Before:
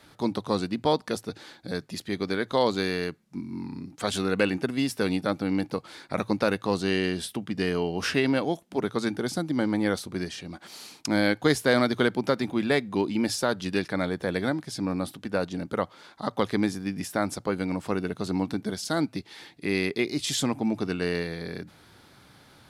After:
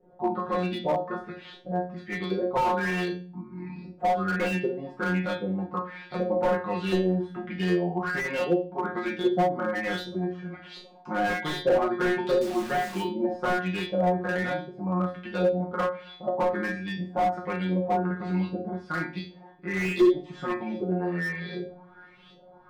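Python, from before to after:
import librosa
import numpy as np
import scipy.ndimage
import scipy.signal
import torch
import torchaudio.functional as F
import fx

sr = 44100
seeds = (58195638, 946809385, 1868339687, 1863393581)

y = fx.filter_lfo_lowpass(x, sr, shape='saw_up', hz=1.3, low_hz=420.0, high_hz=3900.0, q=4.6)
y = fx.comb_fb(y, sr, f0_hz=180.0, decay_s=0.35, harmonics='all', damping=0.0, mix_pct=100)
y = fx.quant_dither(y, sr, seeds[0], bits=8, dither='none', at=(12.41, 13.02))
y = fx.room_shoebox(y, sr, seeds[1], volume_m3=130.0, walls='furnished', distance_m=1.0)
y = fx.slew_limit(y, sr, full_power_hz=25.0)
y = y * 10.0 ** (8.5 / 20.0)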